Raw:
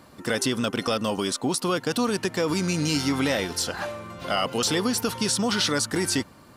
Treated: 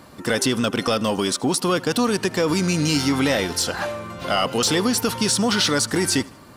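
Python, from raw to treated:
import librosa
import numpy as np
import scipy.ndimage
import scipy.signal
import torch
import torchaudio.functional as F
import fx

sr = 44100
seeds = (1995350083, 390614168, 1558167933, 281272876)

p1 = 10.0 ** (-23.0 / 20.0) * np.tanh(x / 10.0 ** (-23.0 / 20.0))
p2 = x + F.gain(torch.from_numpy(p1), -7.0).numpy()
p3 = fx.echo_feedback(p2, sr, ms=78, feedback_pct=43, wet_db=-24.0)
y = F.gain(torch.from_numpy(p3), 2.0).numpy()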